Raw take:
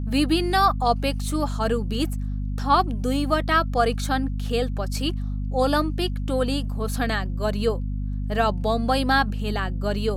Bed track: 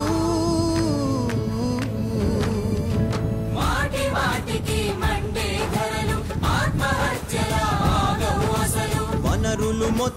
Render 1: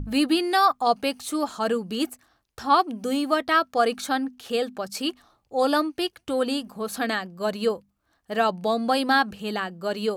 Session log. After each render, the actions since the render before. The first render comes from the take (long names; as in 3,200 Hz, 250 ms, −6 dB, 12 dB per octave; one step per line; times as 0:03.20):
mains-hum notches 50/100/150/200/250 Hz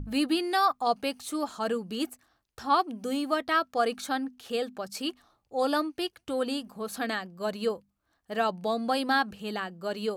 level −5 dB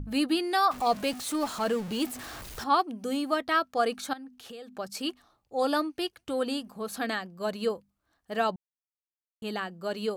0:00.71–0:02.64: converter with a step at zero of −35.5 dBFS
0:04.13–0:04.77: downward compressor, threshold −41 dBFS
0:08.56–0:09.42: silence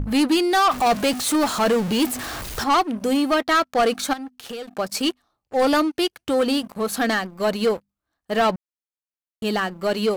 leveller curve on the samples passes 3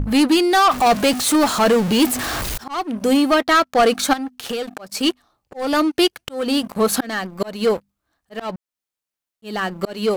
volume swells 442 ms
in parallel at −2 dB: speech leveller within 5 dB 0.5 s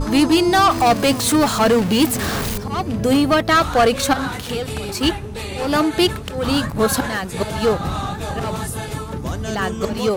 mix in bed track −4 dB